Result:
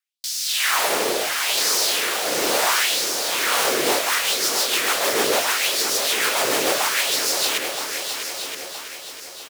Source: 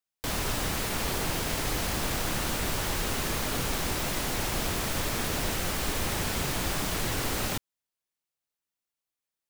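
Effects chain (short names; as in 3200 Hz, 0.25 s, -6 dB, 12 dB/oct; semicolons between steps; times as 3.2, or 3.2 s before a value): LFO high-pass sine 0.72 Hz 430–5300 Hz; in parallel at +1 dB: requantised 8-bit, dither none; on the sum: frequency shift -15 Hz; rotary speaker horn 1 Hz, later 6.7 Hz, at 3.38; feedback echo 0.971 s, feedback 35%, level -9 dB; lo-fi delay 0.651 s, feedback 55%, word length 8-bit, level -8.5 dB; gain +5 dB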